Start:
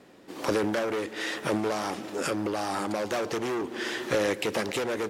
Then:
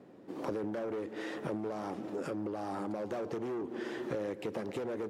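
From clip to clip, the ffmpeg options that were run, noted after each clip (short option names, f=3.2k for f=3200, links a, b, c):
-af "highpass=84,tiltshelf=f=1.3k:g=8.5,acompressor=threshold=-28dB:ratio=3,volume=-7.5dB"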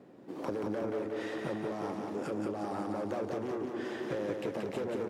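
-af "aecho=1:1:180|360|540|720|900|1080|1260:0.631|0.347|0.191|0.105|0.0577|0.0318|0.0175"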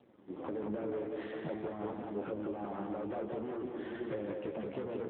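-af "aeval=exprs='sgn(val(0))*max(abs(val(0))-0.00106,0)':c=same,flanger=delay=8.2:depth=8.6:regen=41:speed=0.5:shape=triangular,volume=1.5dB" -ar 8000 -c:a libopencore_amrnb -b:a 7950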